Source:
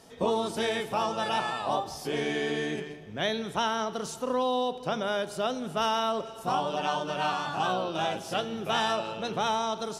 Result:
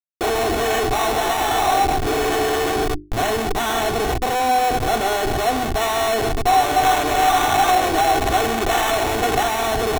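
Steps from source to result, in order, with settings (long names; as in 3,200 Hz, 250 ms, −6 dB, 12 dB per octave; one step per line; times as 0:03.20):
each half-wave held at its own peak
meter weighting curve A
comparator with hysteresis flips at −32 dBFS
0:06.83–0:09.43: high-shelf EQ 8,200 Hz +8.5 dB
sample-rate reduction 4,800 Hz, jitter 0%
mains-hum notches 50/100/150/200/250/300/350/400 Hz
comb filter 2.7 ms, depth 63%
hollow resonant body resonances 760/3,500 Hz, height 8 dB, ringing for 30 ms
level +5.5 dB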